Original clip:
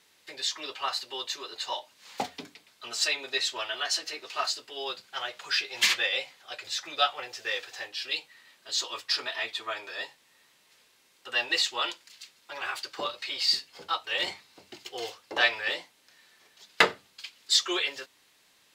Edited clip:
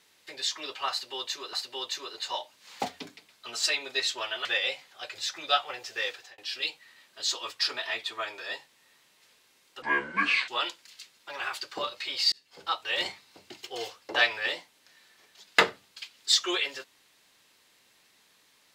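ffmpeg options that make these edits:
-filter_complex "[0:a]asplit=7[a][b][c][d][e][f][g];[a]atrim=end=1.532[h];[b]atrim=start=0.908:end=3.832[i];[c]atrim=start=5.938:end=7.87,asetpts=PTS-STARTPTS,afade=t=out:st=1.652:d=0.28[j];[d]atrim=start=7.87:end=11.314,asetpts=PTS-STARTPTS,afade=t=in:d=0.004:c=hsin[k];[e]atrim=start=11.31:end=11.7,asetpts=PTS-STARTPTS,asetrate=26019,aresample=44100[l];[f]atrim=start=11.696:end=13.54,asetpts=PTS-STARTPTS,afade=t=out:st=1.84:d=0.004:c=hsin[m];[g]atrim=start=13.54,asetpts=PTS-STARTPTS,afade=t=in:d=0.39[n];[h][i]acrossfade=d=0.004:c1=hsin:c2=hsin[o];[j][k]concat=n=2:v=0:a=1[p];[o][p]acrossfade=d=0.004:c1=hsin:c2=hsin[q];[q][l]acrossfade=d=0.004:c1=hsin:c2=hsin[r];[m][n]concat=n=2:v=0:a=1[s];[r][s]acrossfade=d=0.004:c1=hsin:c2=hsin"

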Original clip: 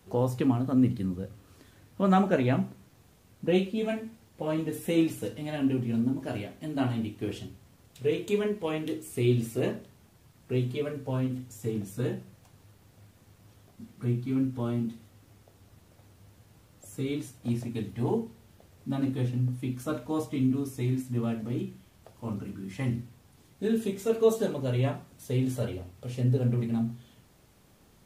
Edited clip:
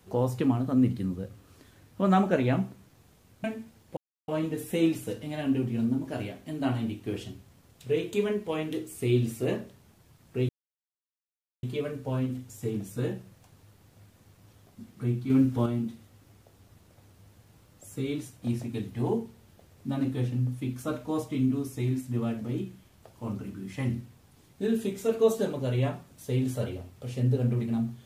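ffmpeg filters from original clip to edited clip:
-filter_complex "[0:a]asplit=6[a][b][c][d][e][f];[a]atrim=end=3.442[g];[b]atrim=start=3.898:end=4.43,asetpts=PTS-STARTPTS,afade=t=out:st=0.528:d=0.004:c=hsin,apad=pad_dur=0.31[h];[c]atrim=start=4.43:end=10.64,asetpts=PTS-STARTPTS,afade=t=in:d=0.004:c=hsin,afade=t=out:st=6.206:d=0.004:c=hsin,apad=pad_dur=1.14[i];[d]atrim=start=10.64:end=14.312,asetpts=PTS-STARTPTS,afade=t=in:d=0.004:c=hsin[j];[e]atrim=start=14.308:end=14.672,asetpts=PTS-STARTPTS,volume=5.5dB[k];[f]atrim=start=14.668[l];[h][i][j]concat=n=3:v=0:a=1[m];[g][m]acrossfade=d=0.004:c1=hsin:c2=hsin[n];[n][k]acrossfade=d=0.004:c1=hsin:c2=hsin[o];[o][l]acrossfade=d=0.004:c1=hsin:c2=hsin"

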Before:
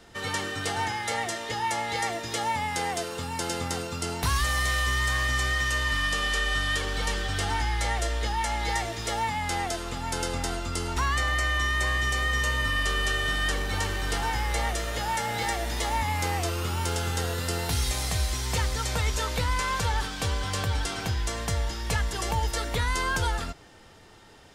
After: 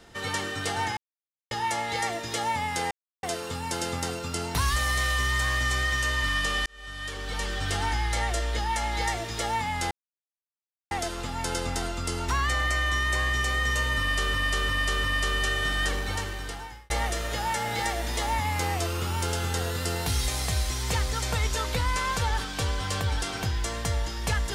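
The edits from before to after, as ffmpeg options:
-filter_complex "[0:a]asplit=10[a][b][c][d][e][f][g][h][i][j];[a]atrim=end=0.97,asetpts=PTS-STARTPTS,afade=t=out:st=0.966:d=0.004:c=hsin[k];[b]atrim=start=0.97:end=1.51,asetpts=PTS-STARTPTS,volume=0[l];[c]atrim=start=1.51:end=2.91,asetpts=PTS-STARTPTS,afade=t=in:d=0.004:c=hsin,afade=t=out:st=1.396:d=0.004:c=hsin,apad=pad_dur=0.32[m];[d]atrim=start=2.91:end=6.34,asetpts=PTS-STARTPTS,afade=t=in:d=0.004:c=hsin,afade=t=out:st=3.426:d=0.004:c=hsin[n];[e]atrim=start=6.34:end=9.59,asetpts=PTS-STARTPTS,afade=t=in:d=1.02,afade=t=out:st=3.246:d=0.004:c=hsin,apad=pad_dur=1[o];[f]atrim=start=9.59:end=13.022,asetpts=PTS-STARTPTS,afade=t=in:d=0.004:c=hsin[p];[g]atrim=start=12.668:end=13.022[q];[h]atrim=start=12.668:end=13.022[r];[i]atrim=start=12.668:end=14.53,asetpts=PTS-STARTPTS,afade=t=out:st=0.902:d=0.96[s];[j]atrim=start=14.53,asetpts=PTS-STARTPTS,afade=t=in:d=0.004:c=hsin[t];[k][l][m][n][o][p]concat=n=6:v=0:a=1[u];[u][q]acrossfade=d=0.004:c1=hsin:c2=hsin[v];[v][r]acrossfade=d=0.004:c1=hsin:c2=hsin[w];[s][t]concat=n=2:v=0:a=1[x];[w][x]acrossfade=d=0.004:c1=hsin:c2=hsin"

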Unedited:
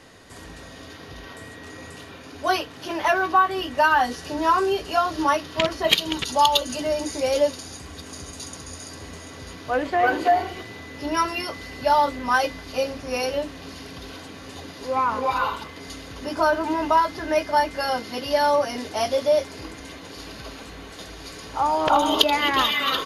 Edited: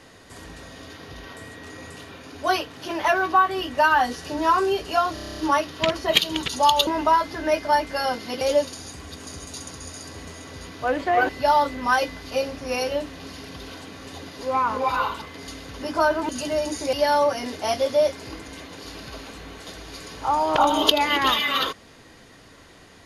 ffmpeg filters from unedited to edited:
-filter_complex "[0:a]asplit=14[a][b][c][d][e][f][g][h][i][j][k][l][m][n];[a]atrim=end=5.172[o];[b]atrim=start=5.138:end=5.172[p];[c]atrim=start=5.138:end=5.172[q];[d]atrim=start=5.138:end=5.172[r];[e]atrim=start=5.138:end=5.172[s];[f]atrim=start=5.138:end=5.172[t];[g]atrim=start=5.138:end=5.172[u];[h]atrim=start=5.138:end=5.172[v];[i]atrim=start=5.138:end=6.632[w];[j]atrim=start=16.708:end=18.252[x];[k]atrim=start=7.268:end=10.152[y];[l]atrim=start=11.708:end=16.712[z];[m]atrim=start=6.628:end=7.272[aa];[n]atrim=start=18.248[ab];[o][p]acrossfade=d=0.004:c1=hsin:c2=hsin[ac];[ac][q]acrossfade=d=0.004:c1=hsin:c2=hsin[ad];[ad][r]acrossfade=d=0.004:c1=hsin:c2=hsin[ae];[ae][s]acrossfade=d=0.004:c1=hsin:c2=hsin[af];[af][t]acrossfade=d=0.004:c1=hsin:c2=hsin[ag];[ag][u]acrossfade=d=0.004:c1=hsin:c2=hsin[ah];[ah][v]acrossfade=d=0.004:c1=hsin:c2=hsin[ai];[ai][w]acrossfade=d=0.004:c1=hsin:c2=hsin[aj];[aj][x]acrossfade=d=0.004:c1=hsin:c2=hsin[ak];[ak][y]acrossfade=d=0.004:c1=hsin:c2=hsin[al];[al][z]acrossfade=d=0.004:c1=hsin:c2=hsin[am];[am][aa]acrossfade=d=0.004:c1=hsin:c2=hsin[an];[an][ab]acrossfade=d=0.004:c1=hsin:c2=hsin"

